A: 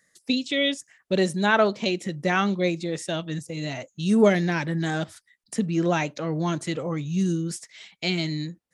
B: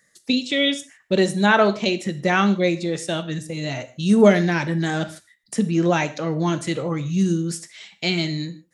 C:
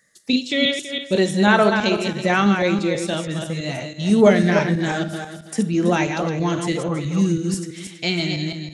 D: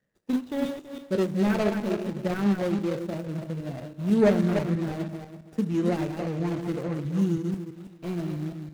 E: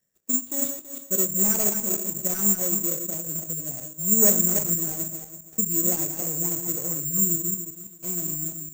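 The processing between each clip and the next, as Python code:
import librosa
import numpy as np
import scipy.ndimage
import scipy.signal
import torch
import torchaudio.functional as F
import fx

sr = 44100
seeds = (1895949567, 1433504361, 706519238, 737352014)

y1 = fx.rev_gated(x, sr, seeds[0], gate_ms=180, shape='falling', drr_db=10.5)
y1 = y1 * 10.0 ** (3.5 / 20.0)
y2 = fx.reverse_delay_fb(y1, sr, ms=164, feedback_pct=45, wet_db=-5.5)
y3 = scipy.signal.medfilt(y2, 41)
y3 = y3 * 10.0 ** (-5.5 / 20.0)
y4 = (np.kron(y3[::6], np.eye(6)[0]) * 6)[:len(y3)]
y4 = y4 * 10.0 ** (-6.0 / 20.0)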